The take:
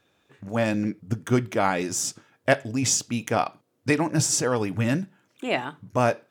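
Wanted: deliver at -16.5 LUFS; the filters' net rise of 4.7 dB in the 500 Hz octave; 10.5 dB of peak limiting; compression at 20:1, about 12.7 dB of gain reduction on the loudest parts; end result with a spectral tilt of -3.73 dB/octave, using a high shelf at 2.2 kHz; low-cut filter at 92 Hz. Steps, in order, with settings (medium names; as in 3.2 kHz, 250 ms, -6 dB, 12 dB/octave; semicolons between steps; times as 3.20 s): high-pass 92 Hz; peaking EQ 500 Hz +5.5 dB; treble shelf 2.2 kHz +4.5 dB; compression 20:1, threshold -22 dBFS; trim +13.5 dB; peak limiter -4 dBFS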